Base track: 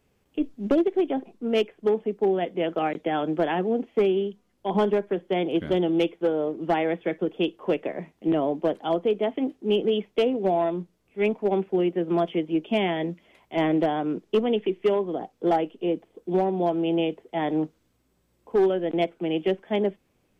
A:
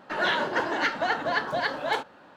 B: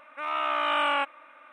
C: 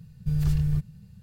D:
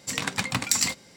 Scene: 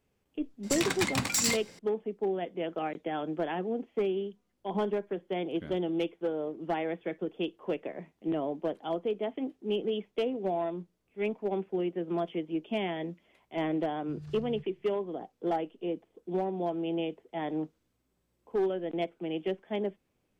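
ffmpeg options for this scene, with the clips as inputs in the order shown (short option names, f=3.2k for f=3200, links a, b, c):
-filter_complex "[0:a]volume=-8dB[a];[4:a]asoftclip=type=hard:threshold=-22dB[b];[3:a]highpass=140,lowpass=6k[c];[b]atrim=end=1.16,asetpts=PTS-STARTPTS,volume=-0.5dB,afade=t=in:d=0.004:c=hsin,afade=t=out:st=1.156:d=0.004:c=hsin,adelay=630[d];[c]atrim=end=1.22,asetpts=PTS-STARTPTS,volume=-16.5dB,afade=t=in:d=0.004:c=hsin,afade=t=out:st=1.216:d=0.004:c=hsin,adelay=13820[e];[a][d][e]amix=inputs=3:normalize=0"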